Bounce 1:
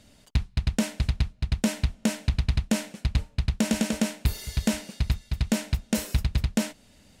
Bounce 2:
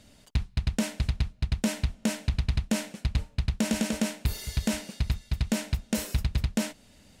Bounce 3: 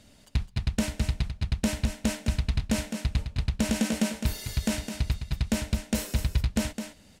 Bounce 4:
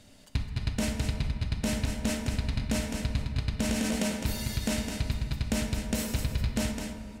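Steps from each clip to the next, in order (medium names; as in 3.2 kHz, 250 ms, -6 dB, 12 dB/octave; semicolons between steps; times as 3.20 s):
peak limiter -17.5 dBFS, peak gain reduction 4 dB
delay 210 ms -8 dB
on a send at -5.5 dB: reverberation RT60 2.1 s, pre-delay 4 ms; on the sum: peak limiter -19 dBFS, peak gain reduction 5 dB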